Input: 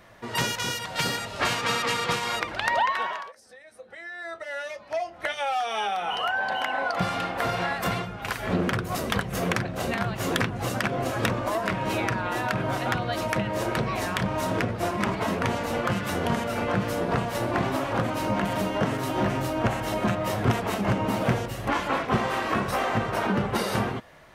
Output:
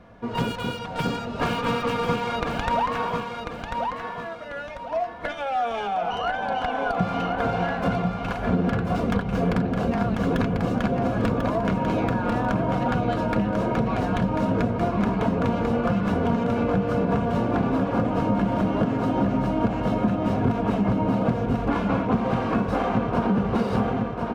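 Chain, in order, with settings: tracing distortion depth 0.26 ms; high-pass 110 Hz 6 dB/octave; tilt EQ -3.5 dB/octave; comb 4.2 ms, depth 41%; on a send: feedback delay 1043 ms, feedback 35%, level -6 dB; on the sum: compression, threshold -18 dBFS, peak gain reduction 7.5 dB; treble shelf 8.3 kHz -8.5 dB; band-stop 1.9 kHz, Q 9.2

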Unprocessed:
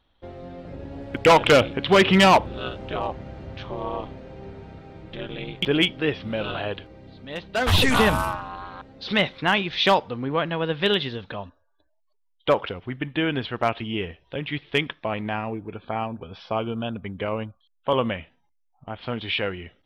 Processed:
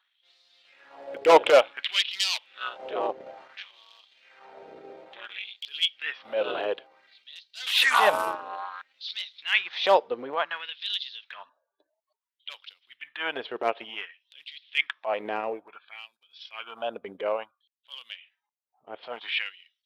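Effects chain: transient shaper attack -11 dB, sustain -7 dB; LFO high-pass sine 0.57 Hz 410–4400 Hz; trim -2 dB

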